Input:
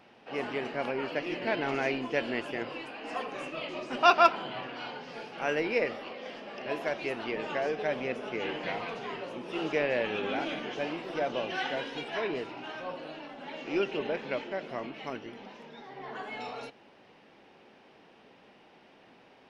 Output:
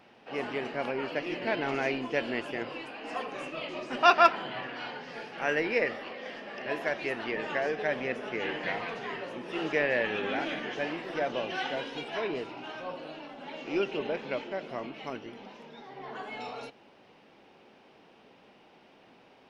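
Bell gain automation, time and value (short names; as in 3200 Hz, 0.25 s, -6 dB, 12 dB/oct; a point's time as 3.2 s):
bell 1800 Hz 0.33 oct
3.67 s +0.5 dB
4.18 s +7.5 dB
11.15 s +7.5 dB
11.63 s -3 dB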